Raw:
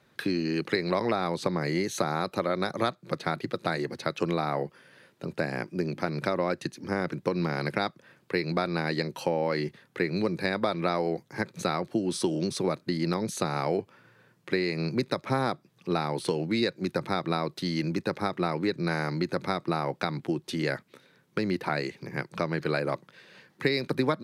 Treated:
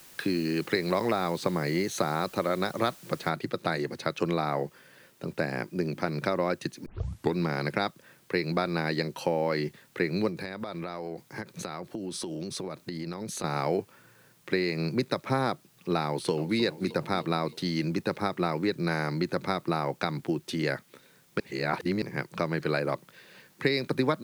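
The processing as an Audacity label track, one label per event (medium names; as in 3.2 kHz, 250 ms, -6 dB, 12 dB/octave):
3.290000	3.290000	noise floor step -52 dB -64 dB
6.860000	6.860000	tape start 0.50 s
10.280000	13.440000	compression 10:1, threshold -31 dBFS
16.060000	16.600000	echo throw 310 ms, feedback 60%, level -14.5 dB
21.400000	22.020000	reverse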